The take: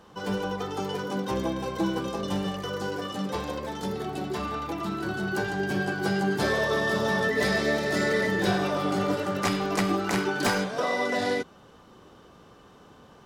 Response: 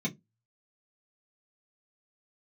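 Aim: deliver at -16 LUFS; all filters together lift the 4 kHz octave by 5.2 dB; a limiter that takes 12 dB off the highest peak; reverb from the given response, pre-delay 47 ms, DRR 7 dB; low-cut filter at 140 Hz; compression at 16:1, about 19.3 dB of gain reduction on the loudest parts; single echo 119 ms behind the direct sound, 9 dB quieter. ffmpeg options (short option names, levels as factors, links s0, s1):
-filter_complex "[0:a]highpass=140,equalizer=f=4000:t=o:g=6.5,acompressor=threshold=0.01:ratio=16,alimiter=level_in=6.68:limit=0.0631:level=0:latency=1,volume=0.15,aecho=1:1:119:0.355,asplit=2[s0][s1];[1:a]atrim=start_sample=2205,adelay=47[s2];[s1][s2]afir=irnorm=-1:irlink=0,volume=0.266[s3];[s0][s3]amix=inputs=2:normalize=0,volume=28.2"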